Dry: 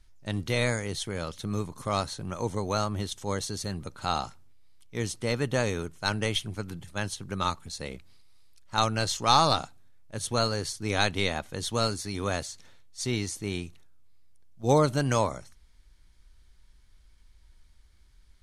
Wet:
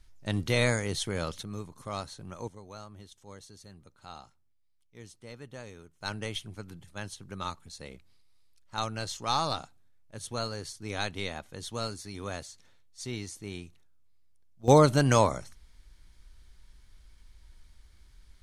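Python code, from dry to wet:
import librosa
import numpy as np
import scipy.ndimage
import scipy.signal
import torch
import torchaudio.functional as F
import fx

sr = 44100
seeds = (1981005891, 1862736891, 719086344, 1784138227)

y = fx.gain(x, sr, db=fx.steps((0.0, 1.0), (1.43, -8.0), (2.48, -17.5), (6.01, -7.5), (14.68, 3.0)))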